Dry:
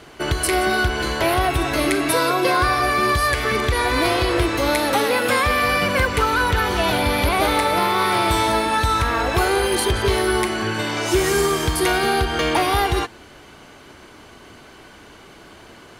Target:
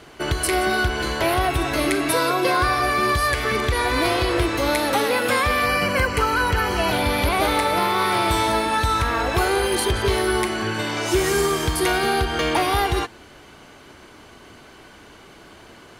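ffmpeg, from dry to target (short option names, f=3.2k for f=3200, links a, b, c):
-filter_complex "[0:a]asettb=1/sr,asplit=3[a][b][c];[a]atrim=end=5.664[d];[b]atrim=start=5.66:end=6.92,asetpts=PTS-STARTPTS,afade=t=in:d=0.004:c=qsin,afade=t=out:st=1.256:d=0.004:c=qsin,asuperstop=centerf=3600:order=12:qfactor=7.6[e];[c]atrim=start=6.916[f];[d][e]acrossfade=d=0.004:c1=hsin:c2=qsin[g];[g][f]acrossfade=d=0.004:c1=qsin:c2=hsin,volume=-1.5dB"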